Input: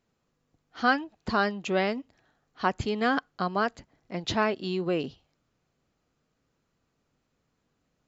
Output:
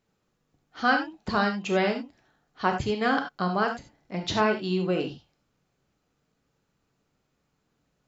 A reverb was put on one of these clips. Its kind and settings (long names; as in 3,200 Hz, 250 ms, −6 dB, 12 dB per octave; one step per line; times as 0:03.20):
reverb whose tail is shaped and stops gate 110 ms flat, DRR 3.5 dB